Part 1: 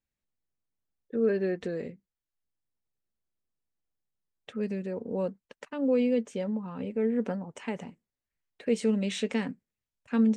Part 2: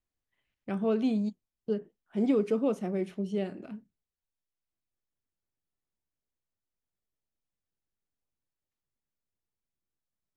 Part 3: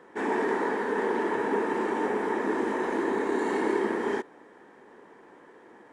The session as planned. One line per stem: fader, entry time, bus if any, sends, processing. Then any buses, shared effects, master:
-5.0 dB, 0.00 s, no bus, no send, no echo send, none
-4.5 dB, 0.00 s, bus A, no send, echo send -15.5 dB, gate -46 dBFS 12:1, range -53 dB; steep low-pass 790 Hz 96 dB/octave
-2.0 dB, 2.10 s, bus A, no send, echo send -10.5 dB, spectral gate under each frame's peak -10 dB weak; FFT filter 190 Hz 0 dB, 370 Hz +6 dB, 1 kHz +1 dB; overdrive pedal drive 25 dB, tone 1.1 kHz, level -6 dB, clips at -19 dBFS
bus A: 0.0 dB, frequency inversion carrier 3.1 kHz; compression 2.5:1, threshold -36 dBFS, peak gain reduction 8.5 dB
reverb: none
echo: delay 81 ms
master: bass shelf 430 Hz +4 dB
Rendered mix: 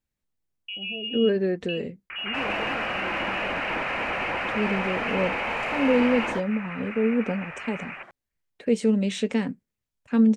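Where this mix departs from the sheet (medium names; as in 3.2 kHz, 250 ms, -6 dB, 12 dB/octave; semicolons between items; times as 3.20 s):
stem 1 -5.0 dB -> +2.0 dB; stem 2 -4.5 dB -> +2.0 dB; stem 3 -2.0 dB -> +7.0 dB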